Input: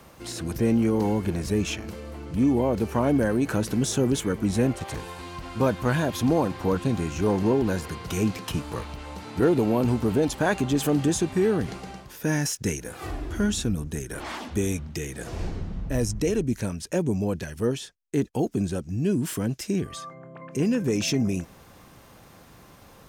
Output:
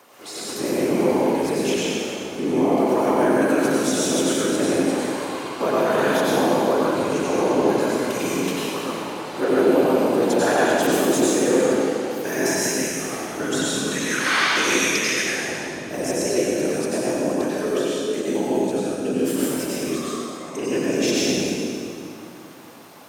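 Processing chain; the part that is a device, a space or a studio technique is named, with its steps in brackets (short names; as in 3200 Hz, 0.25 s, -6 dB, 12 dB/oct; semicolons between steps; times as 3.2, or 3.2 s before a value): 13.75–15.21 band shelf 2600 Hz +13 dB 2.7 oct; whispering ghost (whisperiser; HPF 360 Hz 12 dB/oct; reverb RT60 2.5 s, pre-delay 85 ms, DRR -7 dB)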